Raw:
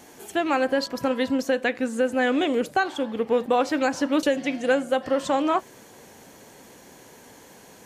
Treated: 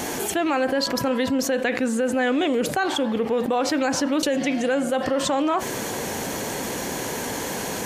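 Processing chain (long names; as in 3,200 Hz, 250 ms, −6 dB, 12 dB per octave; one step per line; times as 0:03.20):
brickwall limiter −15 dBFS, peak gain reduction 4 dB
envelope flattener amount 70%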